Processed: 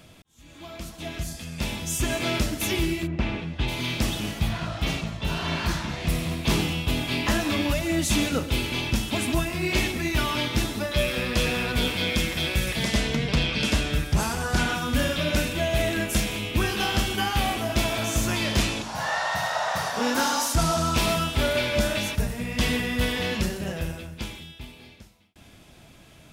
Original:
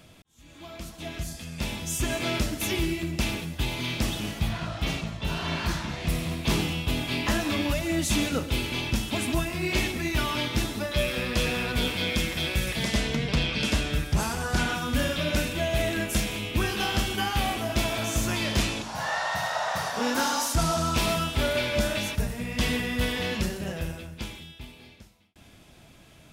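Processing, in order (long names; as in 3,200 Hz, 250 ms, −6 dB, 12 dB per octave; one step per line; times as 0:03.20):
0:03.06–0:03.67: low-pass filter 1,700 Hz → 4,000 Hz 12 dB per octave
level +2 dB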